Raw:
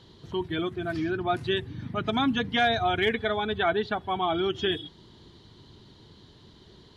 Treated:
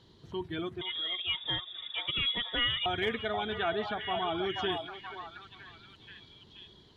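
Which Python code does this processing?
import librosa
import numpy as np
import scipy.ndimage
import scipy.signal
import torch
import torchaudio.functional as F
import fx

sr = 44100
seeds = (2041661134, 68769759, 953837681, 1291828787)

y = fx.freq_invert(x, sr, carrier_hz=3600, at=(0.81, 2.86))
y = fx.echo_stepped(y, sr, ms=480, hz=760.0, octaves=0.7, feedback_pct=70, wet_db=-3.5)
y = F.gain(torch.from_numpy(y), -6.5).numpy()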